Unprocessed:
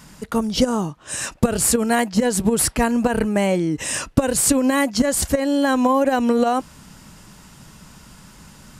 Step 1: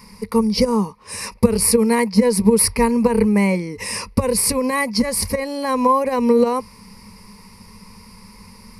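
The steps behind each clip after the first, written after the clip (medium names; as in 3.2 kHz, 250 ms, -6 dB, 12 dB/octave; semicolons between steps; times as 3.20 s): rippled EQ curve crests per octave 0.88, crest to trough 17 dB; trim -2.5 dB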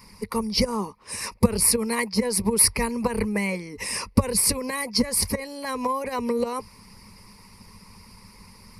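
harmonic-percussive split harmonic -11 dB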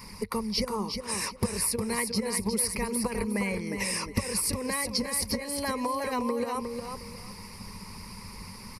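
compression 3:1, threshold -35 dBFS, peak gain reduction 17 dB; feedback delay 359 ms, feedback 24%, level -6 dB; trim +4.5 dB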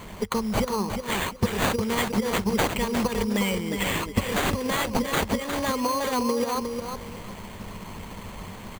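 sample-rate reducer 5.3 kHz, jitter 0%; trim +4.5 dB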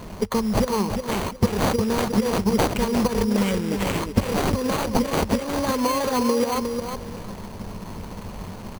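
median filter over 25 samples; trim +4.5 dB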